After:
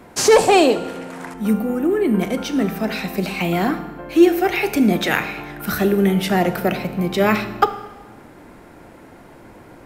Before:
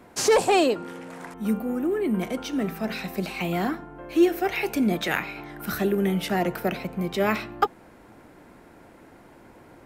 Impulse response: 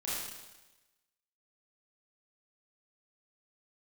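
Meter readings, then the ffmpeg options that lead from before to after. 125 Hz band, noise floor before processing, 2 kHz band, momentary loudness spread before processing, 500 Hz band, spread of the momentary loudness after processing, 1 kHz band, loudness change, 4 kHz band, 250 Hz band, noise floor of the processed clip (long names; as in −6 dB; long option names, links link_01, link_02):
+7.5 dB, −51 dBFS, +6.5 dB, 11 LU, +7.0 dB, 12 LU, +6.5 dB, +7.0 dB, +6.5 dB, +7.0 dB, −44 dBFS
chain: -filter_complex "[0:a]asplit=2[link_01][link_02];[1:a]atrim=start_sample=2205,lowshelf=frequency=180:gain=10[link_03];[link_02][link_03]afir=irnorm=-1:irlink=0,volume=-14.5dB[link_04];[link_01][link_04]amix=inputs=2:normalize=0,volume=5.5dB"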